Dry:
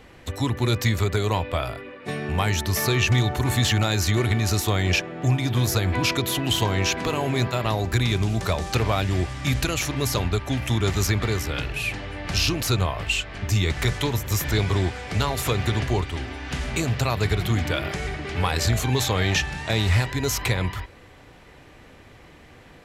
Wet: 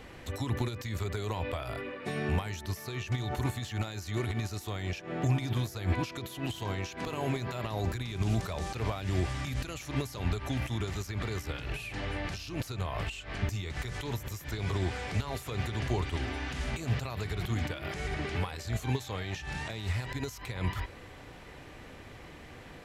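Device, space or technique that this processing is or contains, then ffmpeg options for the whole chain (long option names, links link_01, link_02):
de-esser from a sidechain: -filter_complex "[0:a]asplit=2[link_01][link_02];[link_02]highpass=frequency=6900:poles=1,apad=whole_len=1007580[link_03];[link_01][link_03]sidechaincompress=threshold=-44dB:ratio=16:attack=1.4:release=92"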